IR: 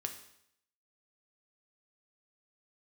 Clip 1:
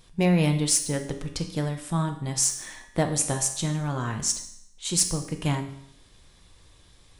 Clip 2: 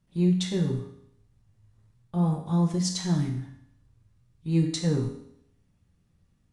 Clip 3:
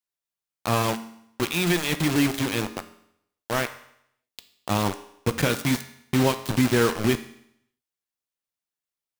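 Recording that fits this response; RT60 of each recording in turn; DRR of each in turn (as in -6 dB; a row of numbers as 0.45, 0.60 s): 1; 0.70, 0.70, 0.70 s; 4.5, 0.5, 9.0 dB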